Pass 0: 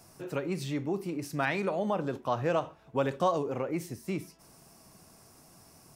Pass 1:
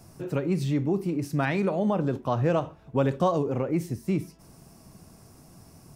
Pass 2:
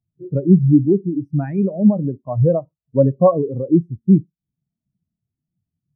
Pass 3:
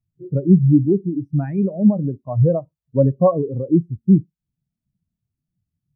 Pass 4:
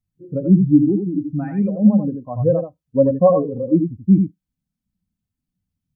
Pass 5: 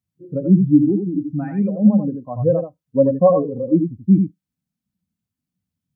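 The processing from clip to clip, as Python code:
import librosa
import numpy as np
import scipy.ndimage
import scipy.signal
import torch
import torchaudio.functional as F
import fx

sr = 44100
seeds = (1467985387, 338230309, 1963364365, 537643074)

y1 = fx.low_shelf(x, sr, hz=340.0, db=11.5)
y2 = fx.rider(y1, sr, range_db=3, speed_s=2.0)
y2 = fx.spectral_expand(y2, sr, expansion=2.5)
y2 = y2 * 10.0 ** (8.5 / 20.0)
y3 = fx.low_shelf(y2, sr, hz=78.0, db=12.0)
y3 = y3 * 10.0 ** (-2.5 / 20.0)
y4 = y3 + 0.57 * np.pad(y3, (int(3.9 * sr / 1000.0), 0))[:len(y3)]
y4 = y4 + 10.0 ** (-6.0 / 20.0) * np.pad(y4, (int(84 * sr / 1000.0), 0))[:len(y4)]
y4 = y4 * 10.0 ** (-1.0 / 20.0)
y5 = scipy.signal.sosfilt(scipy.signal.butter(2, 99.0, 'highpass', fs=sr, output='sos'), y4)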